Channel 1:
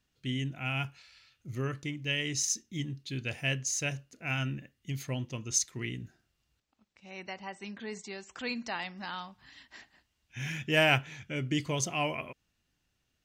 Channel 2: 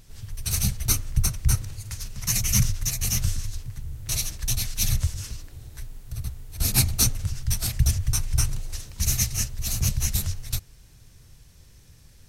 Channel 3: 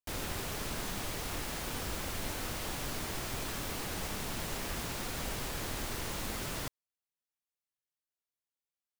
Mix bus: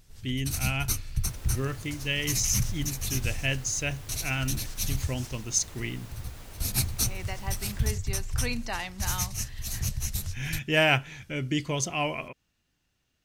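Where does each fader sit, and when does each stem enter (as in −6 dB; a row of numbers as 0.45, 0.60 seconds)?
+2.5, −6.5, −11.0 decibels; 0.00, 0.00, 1.20 seconds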